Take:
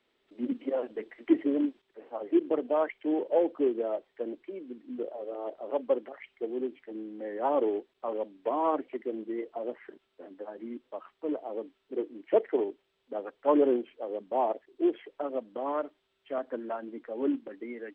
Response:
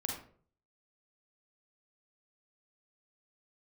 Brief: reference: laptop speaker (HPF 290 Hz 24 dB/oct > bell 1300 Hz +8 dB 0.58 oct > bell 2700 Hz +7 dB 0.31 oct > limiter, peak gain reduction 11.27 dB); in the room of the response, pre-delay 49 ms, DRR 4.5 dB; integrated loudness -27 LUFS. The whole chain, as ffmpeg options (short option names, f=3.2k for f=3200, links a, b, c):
-filter_complex "[0:a]asplit=2[a][b];[1:a]atrim=start_sample=2205,adelay=49[c];[b][c]afir=irnorm=-1:irlink=0,volume=-6.5dB[d];[a][d]amix=inputs=2:normalize=0,highpass=f=290:w=0.5412,highpass=f=290:w=1.3066,equalizer=f=1.3k:t=o:w=0.58:g=8,equalizer=f=2.7k:t=o:w=0.31:g=7,volume=7.5dB,alimiter=limit=-15.5dB:level=0:latency=1"